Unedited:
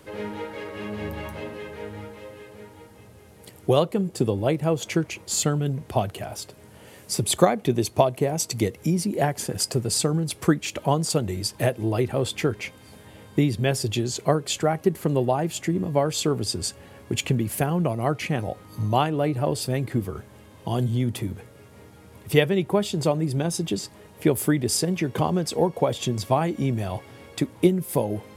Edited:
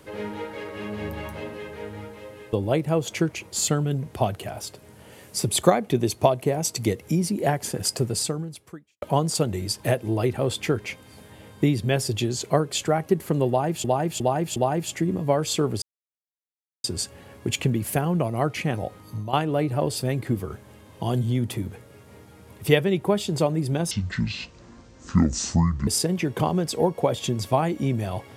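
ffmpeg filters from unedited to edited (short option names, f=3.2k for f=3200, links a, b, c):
-filter_complex "[0:a]asplit=10[a][b][c][d][e][f][g][h][i][j];[a]atrim=end=2.532[k];[b]atrim=start=4.278:end=10.77,asetpts=PTS-STARTPTS,afade=t=out:st=5.562:d=0.93:c=qua[l];[c]atrim=start=10.77:end=15.592,asetpts=PTS-STARTPTS,afade=t=in:d=0.004:c=hsin[m];[d]atrim=start=15.228:end=15.592[n];[e]atrim=start=15.228:end=15.592[o];[f]atrim=start=15.228:end=16.49,asetpts=PTS-STARTPTS,afade=t=out:st=1.258:d=0.004:c=hsin,apad=pad_dur=1.02[p];[g]atrim=start=16.49:end=18.98,asetpts=PTS-STARTPTS,afade=t=in:d=0.004:c=hsin,afade=t=out:st=2.15:d=0.34:silence=0.211349[q];[h]atrim=start=18.98:end=23.564,asetpts=PTS-STARTPTS,afade=t=in:d=0.004:c=hsin:silence=0.211349[r];[i]atrim=start=23.56:end=24.66,asetpts=PTS-STARTPTS,asetrate=24696,aresample=44100[s];[j]atrim=start=24.656[t];[l][m]concat=n=2:v=0:a=1[u];[k][u]acrossfade=d=0.004:c1=hsin:c2=hsin[v];[v][n]acrossfade=d=0.004:c1=hsin:c2=hsin[w];[w][o]acrossfade=d=0.004:c1=hsin:c2=hsin[x];[p][q][r]concat=n=3:v=0:a=1[y];[x][y]acrossfade=d=0.004:c1=hsin:c2=hsin[z];[z][s]acrossfade=d=0.004:c1=hsin:c2=hsin[aa];[aa][t]acrossfade=d=0.004:c1=hsin:c2=hsin"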